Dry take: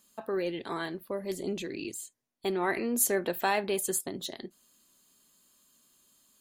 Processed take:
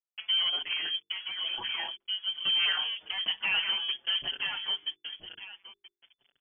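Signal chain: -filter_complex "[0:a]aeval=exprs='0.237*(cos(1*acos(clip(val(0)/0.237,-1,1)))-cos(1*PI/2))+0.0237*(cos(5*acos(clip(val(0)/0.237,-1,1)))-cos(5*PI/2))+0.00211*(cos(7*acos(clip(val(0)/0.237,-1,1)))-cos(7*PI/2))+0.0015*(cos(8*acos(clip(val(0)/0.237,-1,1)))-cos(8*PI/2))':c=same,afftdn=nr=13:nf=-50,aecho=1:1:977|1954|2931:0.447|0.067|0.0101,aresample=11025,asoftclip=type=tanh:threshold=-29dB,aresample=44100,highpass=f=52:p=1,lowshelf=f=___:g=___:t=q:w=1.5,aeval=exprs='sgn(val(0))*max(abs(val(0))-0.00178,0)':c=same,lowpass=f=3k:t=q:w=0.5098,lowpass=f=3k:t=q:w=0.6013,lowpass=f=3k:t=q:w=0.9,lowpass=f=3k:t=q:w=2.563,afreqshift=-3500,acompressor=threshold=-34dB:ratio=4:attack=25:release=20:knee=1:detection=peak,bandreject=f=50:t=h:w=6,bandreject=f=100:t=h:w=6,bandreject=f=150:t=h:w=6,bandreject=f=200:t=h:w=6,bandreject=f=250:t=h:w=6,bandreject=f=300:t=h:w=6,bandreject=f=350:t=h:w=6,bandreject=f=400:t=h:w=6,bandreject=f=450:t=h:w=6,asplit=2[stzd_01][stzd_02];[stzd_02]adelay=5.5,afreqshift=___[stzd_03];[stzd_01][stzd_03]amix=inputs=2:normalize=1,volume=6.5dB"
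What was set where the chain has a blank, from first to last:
280, -6.5, 0.51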